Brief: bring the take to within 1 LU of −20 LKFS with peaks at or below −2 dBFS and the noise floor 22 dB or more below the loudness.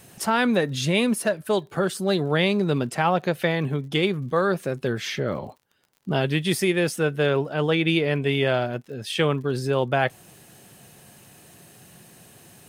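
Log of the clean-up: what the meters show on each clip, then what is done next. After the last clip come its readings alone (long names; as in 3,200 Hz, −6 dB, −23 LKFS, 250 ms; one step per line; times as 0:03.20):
crackle rate 48 per second; integrated loudness −23.5 LKFS; sample peak −6.5 dBFS; target loudness −20.0 LKFS
→ click removal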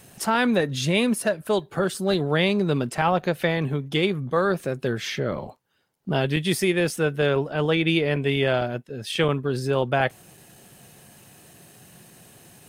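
crackle rate 0.55 per second; integrated loudness −24.0 LKFS; sample peak −6.5 dBFS; target loudness −20.0 LKFS
→ level +4 dB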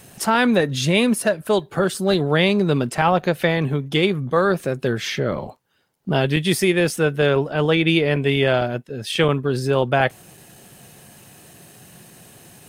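integrated loudness −20.0 LKFS; sample peak −2.5 dBFS; background noise floor −51 dBFS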